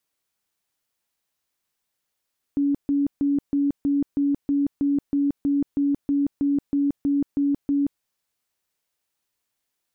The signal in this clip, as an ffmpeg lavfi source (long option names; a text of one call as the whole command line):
ffmpeg -f lavfi -i "aevalsrc='0.126*sin(2*PI*283*mod(t,0.32))*lt(mod(t,0.32),50/283)':duration=5.44:sample_rate=44100" out.wav